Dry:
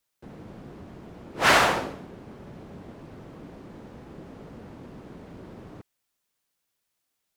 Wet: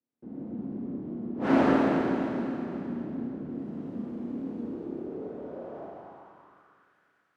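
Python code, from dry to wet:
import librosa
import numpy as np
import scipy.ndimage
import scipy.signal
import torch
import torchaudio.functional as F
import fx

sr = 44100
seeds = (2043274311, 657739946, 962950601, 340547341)

y = fx.clip_1bit(x, sr, at=(3.5, 4.64))
y = fx.rev_schroeder(y, sr, rt60_s=3.2, comb_ms=26, drr_db=-7.0)
y = fx.filter_sweep_bandpass(y, sr, from_hz=260.0, to_hz=1500.0, start_s=4.6, end_s=6.96, q=2.9)
y = y * 10.0 ** (6.0 / 20.0)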